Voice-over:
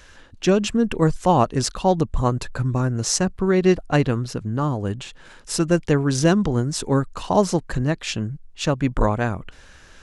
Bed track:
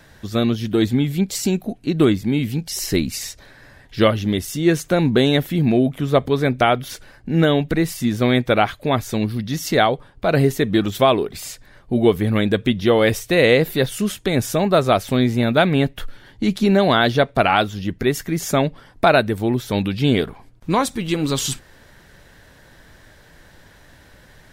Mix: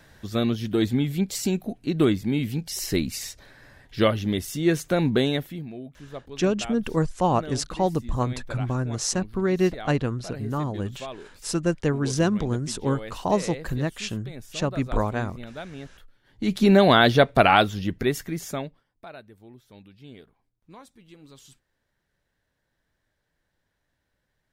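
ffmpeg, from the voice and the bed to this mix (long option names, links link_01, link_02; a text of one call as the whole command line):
ffmpeg -i stem1.wav -i stem2.wav -filter_complex "[0:a]adelay=5950,volume=-5dB[link_01];[1:a]volume=16.5dB,afade=type=out:start_time=5.13:duration=0.55:silence=0.141254,afade=type=in:start_time=16.23:duration=0.47:silence=0.0841395,afade=type=out:start_time=17.56:duration=1.28:silence=0.0398107[link_02];[link_01][link_02]amix=inputs=2:normalize=0" out.wav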